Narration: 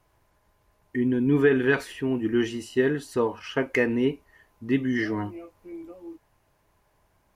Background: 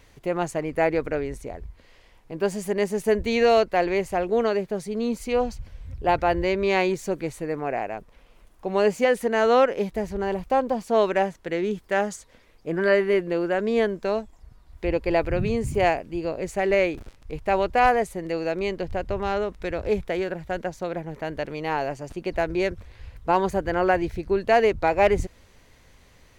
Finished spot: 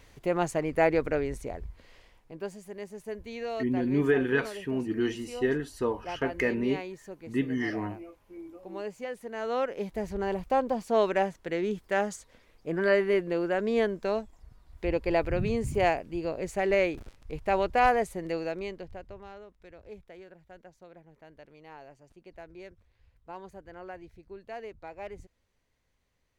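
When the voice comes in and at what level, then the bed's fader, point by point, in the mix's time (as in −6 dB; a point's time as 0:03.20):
2.65 s, −4.5 dB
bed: 0:02.00 −1.5 dB
0:02.62 −16.5 dB
0:09.21 −16.5 dB
0:10.10 −4 dB
0:18.33 −4 dB
0:19.39 −22 dB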